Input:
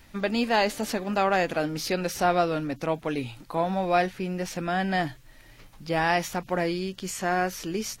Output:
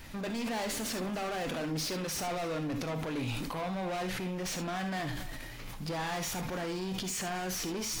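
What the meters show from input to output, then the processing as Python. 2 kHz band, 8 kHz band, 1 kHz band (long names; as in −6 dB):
−9.0 dB, +0.5 dB, −11.0 dB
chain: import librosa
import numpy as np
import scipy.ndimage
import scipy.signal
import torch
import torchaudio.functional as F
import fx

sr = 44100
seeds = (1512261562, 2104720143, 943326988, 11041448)

p1 = fx.over_compress(x, sr, threshold_db=-37.0, ratio=-1.0)
p2 = x + (p1 * 10.0 ** (-1.0 / 20.0))
p3 = np.clip(10.0 ** (27.5 / 20.0) * p2, -1.0, 1.0) / 10.0 ** (27.5 / 20.0)
p4 = p3 + 10.0 ** (-22.0 / 20.0) * np.pad(p3, (int(277 * sr / 1000.0), 0))[:len(p3)]
p5 = fx.rev_gated(p4, sr, seeds[0], gate_ms=90, shape='rising', drr_db=7.0)
p6 = fx.sustainer(p5, sr, db_per_s=21.0)
y = p6 * 10.0 ** (-6.0 / 20.0)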